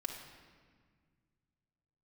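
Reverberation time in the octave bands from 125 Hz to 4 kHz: 3.0 s, 2.5 s, 1.8 s, 1.7 s, 1.6 s, 1.3 s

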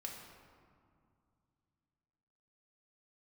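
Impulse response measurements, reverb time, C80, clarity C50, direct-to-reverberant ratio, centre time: 2.3 s, 4.5 dB, 3.0 dB, -1.0 dB, 65 ms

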